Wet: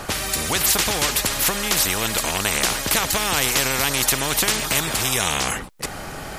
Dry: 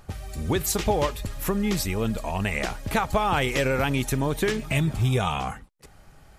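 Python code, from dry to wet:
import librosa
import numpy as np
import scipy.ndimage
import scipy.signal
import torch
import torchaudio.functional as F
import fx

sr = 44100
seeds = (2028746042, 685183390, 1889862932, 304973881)

y = fx.spectral_comp(x, sr, ratio=4.0)
y = y * librosa.db_to_amplitude(8.5)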